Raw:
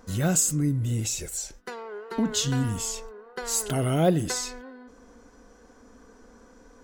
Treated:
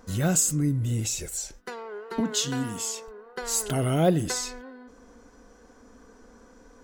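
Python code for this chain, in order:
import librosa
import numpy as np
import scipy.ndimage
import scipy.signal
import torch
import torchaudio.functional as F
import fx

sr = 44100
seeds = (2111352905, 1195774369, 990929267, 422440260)

y = fx.highpass(x, sr, hz=200.0, slope=12, at=(2.2, 3.08))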